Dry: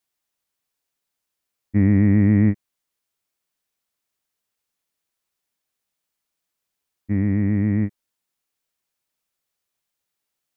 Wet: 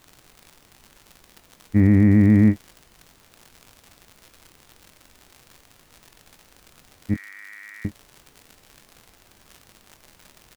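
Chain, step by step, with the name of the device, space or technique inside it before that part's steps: vinyl LP (crackle 110/s -34 dBFS; pink noise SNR 33 dB); 7.14–7.85 Chebyshev high-pass 1400 Hz, order 3; doubler 23 ms -12 dB; gain +1.5 dB

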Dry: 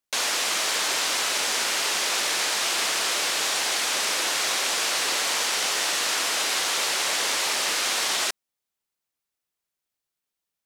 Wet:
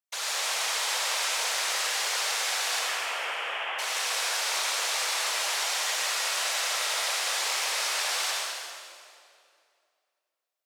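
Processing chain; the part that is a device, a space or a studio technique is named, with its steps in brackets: 2.79–3.79 steep low-pass 3200 Hz 96 dB/oct; whispering ghost (whisperiser; HPF 500 Hz 24 dB/oct; reverb RT60 2.4 s, pre-delay 62 ms, DRR -4 dB); gain -8.5 dB

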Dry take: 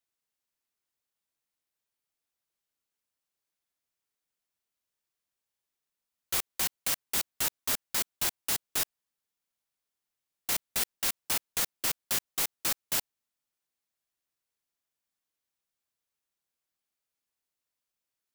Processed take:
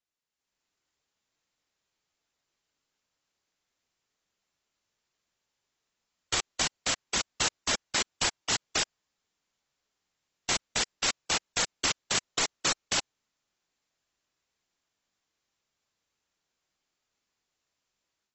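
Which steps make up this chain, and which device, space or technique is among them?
low-bitrate web radio (AGC gain up to 9.5 dB; limiter -10.5 dBFS, peak gain reduction 4.5 dB; gain -2 dB; AAC 24 kbps 22050 Hz)

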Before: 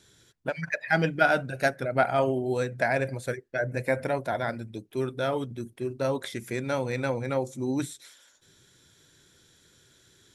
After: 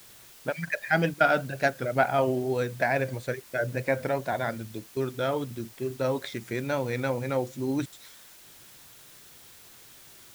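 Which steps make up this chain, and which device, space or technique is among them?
worn cassette (LPF 6100 Hz; wow and flutter; level dips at 1.14/4.9/7.86, 63 ms -17 dB; white noise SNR 22 dB)

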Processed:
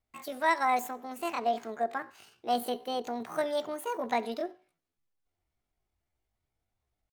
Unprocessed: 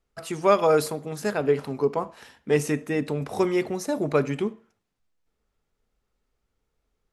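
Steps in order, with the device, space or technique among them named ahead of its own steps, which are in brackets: chipmunk voice (pitch shift +8.5 st); gain -7.5 dB

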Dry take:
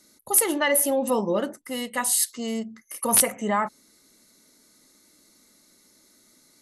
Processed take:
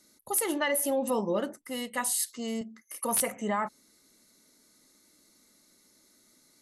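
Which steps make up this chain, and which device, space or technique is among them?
2.61–3.18 HPF 180 Hz; clipper into limiter (hard clip -10 dBFS, distortion -26 dB; limiter -14.5 dBFS, peak gain reduction 4.5 dB); gain -4.5 dB

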